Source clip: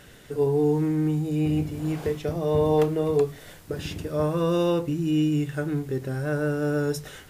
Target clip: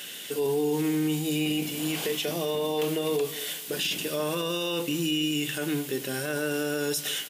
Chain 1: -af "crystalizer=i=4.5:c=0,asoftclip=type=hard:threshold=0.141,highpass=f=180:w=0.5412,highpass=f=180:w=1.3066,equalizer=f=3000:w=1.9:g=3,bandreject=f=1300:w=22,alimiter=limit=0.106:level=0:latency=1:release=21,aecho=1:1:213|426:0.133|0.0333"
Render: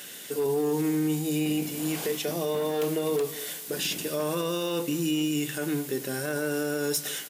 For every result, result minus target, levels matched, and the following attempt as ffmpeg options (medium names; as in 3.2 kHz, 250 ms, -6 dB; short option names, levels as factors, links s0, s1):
hard clipper: distortion +20 dB; 4 kHz band -4.5 dB
-af "crystalizer=i=4.5:c=0,asoftclip=type=hard:threshold=0.282,highpass=f=180:w=0.5412,highpass=f=180:w=1.3066,equalizer=f=3000:w=1.9:g=3,bandreject=f=1300:w=22,alimiter=limit=0.106:level=0:latency=1:release=21,aecho=1:1:213|426:0.133|0.0333"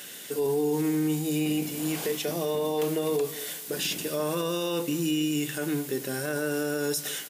4 kHz band -4.5 dB
-af "crystalizer=i=4.5:c=0,asoftclip=type=hard:threshold=0.282,highpass=f=180:w=0.5412,highpass=f=180:w=1.3066,equalizer=f=3000:w=1.9:g=11,bandreject=f=1300:w=22,alimiter=limit=0.106:level=0:latency=1:release=21,aecho=1:1:213|426:0.133|0.0333"